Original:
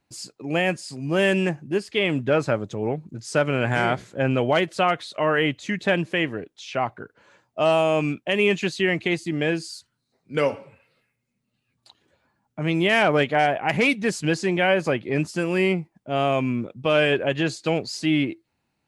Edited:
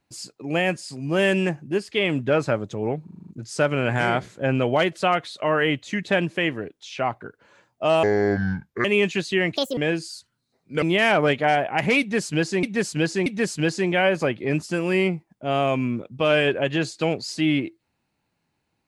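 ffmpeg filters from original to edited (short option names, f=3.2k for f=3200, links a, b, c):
-filter_complex "[0:a]asplit=14[a][b][c][d][e][f][g][h][i][j][k][l][m][n];[a]atrim=end=3.082[o];[b]atrim=start=3.038:end=3.082[p];[c]atrim=start=3.038:end=3.082[q];[d]atrim=start=3.038:end=3.082[r];[e]atrim=start=3.038:end=3.082[s];[f]atrim=start=3.038:end=3.082[t];[g]atrim=start=3.038:end=7.794[u];[h]atrim=start=7.79:end=8.32,asetpts=PTS-STARTPTS,asetrate=28665,aresample=44100,atrim=end_sample=35958,asetpts=PTS-STARTPTS[v];[i]atrim=start=8.316:end=9.044[w];[j]atrim=start=9.04:end=9.37,asetpts=PTS-STARTPTS,asetrate=70560,aresample=44100[x];[k]atrim=start=9.366:end=10.422[y];[l]atrim=start=12.728:end=14.542[z];[m]atrim=start=13.908:end=14.542[aa];[n]atrim=start=13.908[ab];[o][p]acrossfade=d=0.004:c1=hsin:c2=hsin[ac];[ac][q]acrossfade=d=0.004:c1=hsin:c2=hsin[ad];[ad][r]acrossfade=d=0.004:c1=hsin:c2=hsin[ae];[ae][s]acrossfade=d=0.004:c1=hsin:c2=hsin[af];[af][t]acrossfade=d=0.004:c1=hsin:c2=hsin[ag];[ag][u]acrossfade=d=0.004:c1=hsin:c2=hsin[ah];[ah][v]acrossfade=d=0.004:c1=hsin:c2=hsin[ai];[ai][w]acrossfade=d=0.004:c1=hsin:c2=hsin[aj];[aj][x]acrossfade=d=0.004:c1=hsin:c2=hsin[ak];[ak][y]acrossfade=d=0.004:c1=hsin:c2=hsin[al];[al][z]acrossfade=d=0.004:c1=hsin:c2=hsin[am];[am][aa]acrossfade=d=0.004:c1=hsin:c2=hsin[an];[an][ab]acrossfade=d=0.004:c1=hsin:c2=hsin"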